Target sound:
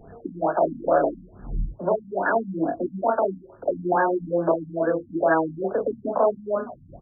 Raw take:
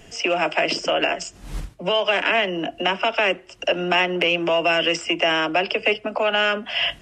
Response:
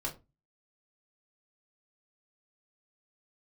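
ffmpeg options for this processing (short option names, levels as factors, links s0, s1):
-af "aecho=1:1:31|52:0.708|0.531,afftfilt=real='re*lt(b*sr/1024,270*pow(1800/270,0.5+0.5*sin(2*PI*2.3*pts/sr)))':imag='im*lt(b*sr/1024,270*pow(1800/270,0.5+0.5*sin(2*PI*2.3*pts/sr)))':win_size=1024:overlap=0.75"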